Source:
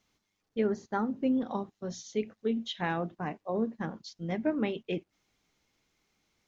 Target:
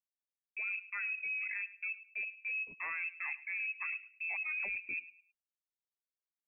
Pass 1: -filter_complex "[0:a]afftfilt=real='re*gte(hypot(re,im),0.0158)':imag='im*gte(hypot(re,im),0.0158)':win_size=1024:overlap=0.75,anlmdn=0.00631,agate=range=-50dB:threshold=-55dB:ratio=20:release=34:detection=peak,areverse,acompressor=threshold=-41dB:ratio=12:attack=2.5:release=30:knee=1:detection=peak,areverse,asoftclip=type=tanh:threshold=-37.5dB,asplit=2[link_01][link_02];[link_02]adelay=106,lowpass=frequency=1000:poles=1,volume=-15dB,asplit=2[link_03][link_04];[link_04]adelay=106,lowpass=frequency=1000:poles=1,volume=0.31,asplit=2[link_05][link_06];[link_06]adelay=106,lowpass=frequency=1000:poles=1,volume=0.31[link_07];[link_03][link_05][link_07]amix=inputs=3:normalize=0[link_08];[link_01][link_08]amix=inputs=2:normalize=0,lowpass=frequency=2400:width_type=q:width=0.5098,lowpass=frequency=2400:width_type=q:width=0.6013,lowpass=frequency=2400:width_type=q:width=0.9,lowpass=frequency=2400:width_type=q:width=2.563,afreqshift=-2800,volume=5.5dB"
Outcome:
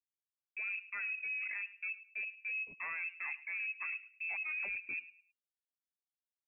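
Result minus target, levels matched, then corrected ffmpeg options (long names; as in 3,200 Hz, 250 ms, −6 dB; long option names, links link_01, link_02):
soft clipping: distortion +18 dB
-filter_complex "[0:a]afftfilt=real='re*gte(hypot(re,im),0.0158)':imag='im*gte(hypot(re,im),0.0158)':win_size=1024:overlap=0.75,anlmdn=0.00631,agate=range=-50dB:threshold=-55dB:ratio=20:release=34:detection=peak,areverse,acompressor=threshold=-41dB:ratio=12:attack=2.5:release=30:knee=1:detection=peak,areverse,asoftclip=type=tanh:threshold=-27dB,asplit=2[link_01][link_02];[link_02]adelay=106,lowpass=frequency=1000:poles=1,volume=-15dB,asplit=2[link_03][link_04];[link_04]adelay=106,lowpass=frequency=1000:poles=1,volume=0.31,asplit=2[link_05][link_06];[link_06]adelay=106,lowpass=frequency=1000:poles=1,volume=0.31[link_07];[link_03][link_05][link_07]amix=inputs=3:normalize=0[link_08];[link_01][link_08]amix=inputs=2:normalize=0,lowpass=frequency=2400:width_type=q:width=0.5098,lowpass=frequency=2400:width_type=q:width=0.6013,lowpass=frequency=2400:width_type=q:width=0.9,lowpass=frequency=2400:width_type=q:width=2.563,afreqshift=-2800,volume=5.5dB"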